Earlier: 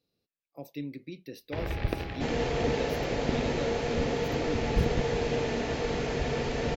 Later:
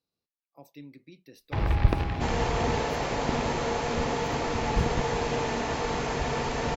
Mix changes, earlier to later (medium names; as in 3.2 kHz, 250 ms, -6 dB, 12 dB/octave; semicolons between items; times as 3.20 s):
speech -8.5 dB; first sound: add bass shelf 230 Hz +10.5 dB; master: add ten-band graphic EQ 500 Hz -3 dB, 1 kHz +10 dB, 8 kHz +7 dB